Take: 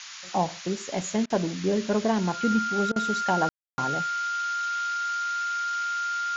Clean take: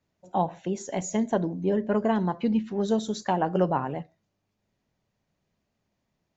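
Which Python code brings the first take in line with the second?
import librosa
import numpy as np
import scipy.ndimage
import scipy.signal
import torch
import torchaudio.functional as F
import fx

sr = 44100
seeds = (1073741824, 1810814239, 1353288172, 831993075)

y = fx.notch(x, sr, hz=1400.0, q=30.0)
y = fx.fix_ambience(y, sr, seeds[0], print_start_s=0.0, print_end_s=0.5, start_s=3.49, end_s=3.78)
y = fx.fix_interpolate(y, sr, at_s=(1.26, 2.92), length_ms=39.0)
y = fx.noise_reduce(y, sr, print_start_s=0.0, print_end_s=0.5, reduce_db=30.0)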